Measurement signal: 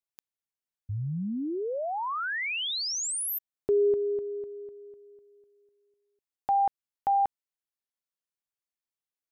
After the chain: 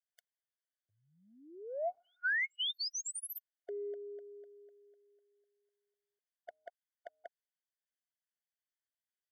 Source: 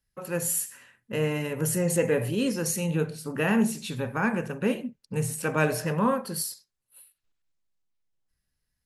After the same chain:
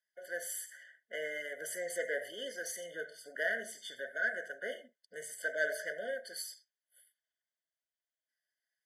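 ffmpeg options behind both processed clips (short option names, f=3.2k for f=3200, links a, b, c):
-filter_complex "[0:a]asplit=2[a][b];[b]highpass=f=720:p=1,volume=11dB,asoftclip=type=tanh:threshold=-10.5dB[c];[a][c]amix=inputs=2:normalize=0,lowpass=f=4.1k:p=1,volume=-6dB,highpass=f=850:t=q:w=3.9,afftfilt=real='re*eq(mod(floor(b*sr/1024/730),2),0)':imag='im*eq(mod(floor(b*sr/1024/730),2),0)':win_size=1024:overlap=0.75,volume=-8dB"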